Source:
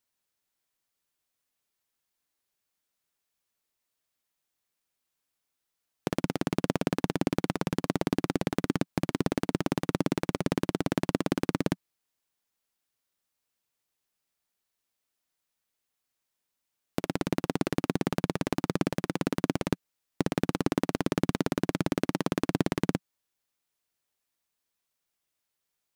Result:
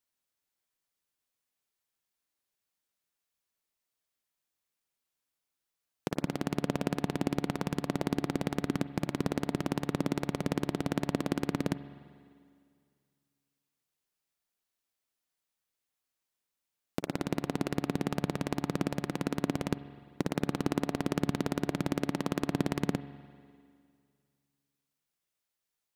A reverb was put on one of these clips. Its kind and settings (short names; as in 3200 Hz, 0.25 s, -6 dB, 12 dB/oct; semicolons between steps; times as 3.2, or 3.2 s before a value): spring tank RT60 2.2 s, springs 43/50 ms, chirp 25 ms, DRR 13.5 dB; gain -3.5 dB